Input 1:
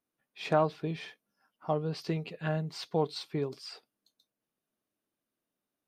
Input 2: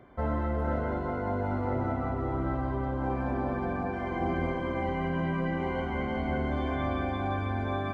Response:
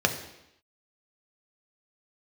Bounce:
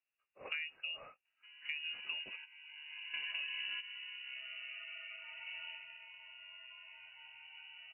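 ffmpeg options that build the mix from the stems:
-filter_complex "[0:a]highshelf=frequency=3600:gain=-6.5,volume=-4.5dB,asplit=3[link_01][link_02][link_03];[link_01]atrim=end=2.37,asetpts=PTS-STARTPTS,afade=type=out:start_time=2.366:duration=0.004:curve=hsin[link_04];[link_02]atrim=start=2.37:end=3.13,asetpts=PTS-STARTPTS,volume=0[link_05];[link_03]atrim=start=3.13,asetpts=PTS-STARTPTS,afade=type=in:duration=0.004:curve=hsin[link_06];[link_04][link_05][link_06]concat=n=3:v=0:a=1,asplit=2[link_07][link_08];[1:a]adelay=1250,volume=-6.5dB,afade=type=in:start_time=2.5:duration=0.64:silence=0.237137,afade=type=out:start_time=5.62:duration=0.43:silence=0.421697[link_09];[link_08]apad=whole_len=405086[link_10];[link_09][link_10]sidechaingate=range=-11dB:threshold=-58dB:ratio=16:detection=peak[link_11];[link_07][link_11]amix=inputs=2:normalize=0,lowpass=frequency=2600:width_type=q:width=0.5098,lowpass=frequency=2600:width_type=q:width=0.6013,lowpass=frequency=2600:width_type=q:width=0.9,lowpass=frequency=2600:width_type=q:width=2.563,afreqshift=-3000,acompressor=threshold=-38dB:ratio=6"

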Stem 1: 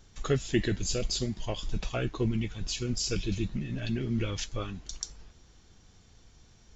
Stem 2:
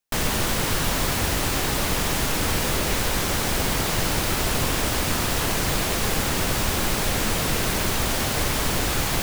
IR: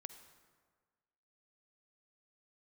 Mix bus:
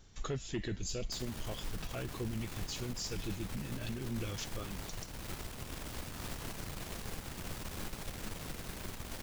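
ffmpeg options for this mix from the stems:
-filter_complex "[0:a]asoftclip=type=tanh:threshold=-18.5dB,volume=-2.5dB[link_01];[1:a]acrossover=split=260[link_02][link_03];[link_03]acompressor=threshold=-28dB:ratio=3[link_04];[link_02][link_04]amix=inputs=2:normalize=0,aeval=exprs='(tanh(6.31*val(0)+0.8)-tanh(0.8))/6.31':channel_layout=same,adelay=1000,volume=-10.5dB[link_05];[link_01][link_05]amix=inputs=2:normalize=0,alimiter=level_in=5dB:limit=-24dB:level=0:latency=1:release=327,volume=-5dB"

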